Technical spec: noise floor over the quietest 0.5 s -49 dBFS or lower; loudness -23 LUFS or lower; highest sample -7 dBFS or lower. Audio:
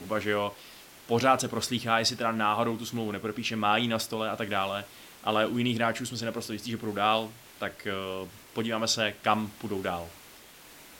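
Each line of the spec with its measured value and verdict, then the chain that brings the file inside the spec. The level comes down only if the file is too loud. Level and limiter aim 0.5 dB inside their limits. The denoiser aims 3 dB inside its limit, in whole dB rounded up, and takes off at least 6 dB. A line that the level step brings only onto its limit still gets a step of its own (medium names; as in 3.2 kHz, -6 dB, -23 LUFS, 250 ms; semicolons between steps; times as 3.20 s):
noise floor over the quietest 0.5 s -51 dBFS: pass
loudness -29.0 LUFS: pass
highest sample -8.5 dBFS: pass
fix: none needed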